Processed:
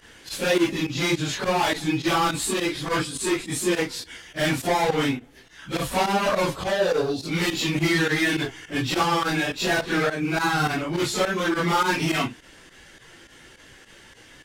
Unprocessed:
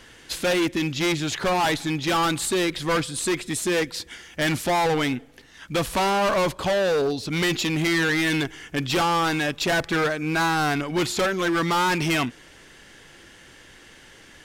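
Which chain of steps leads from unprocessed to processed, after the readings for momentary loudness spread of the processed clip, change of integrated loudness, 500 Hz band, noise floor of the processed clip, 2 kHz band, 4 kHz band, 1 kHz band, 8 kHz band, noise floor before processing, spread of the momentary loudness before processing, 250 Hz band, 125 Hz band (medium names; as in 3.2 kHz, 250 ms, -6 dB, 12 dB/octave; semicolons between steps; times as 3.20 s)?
5 LU, -0.5 dB, -0.5 dB, -50 dBFS, -0.5 dB, -0.5 dB, -0.5 dB, -0.5 dB, -49 dBFS, 5 LU, 0.0 dB, 0.0 dB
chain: phase randomisation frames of 100 ms; volume shaper 104 bpm, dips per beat 2, -13 dB, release 68 ms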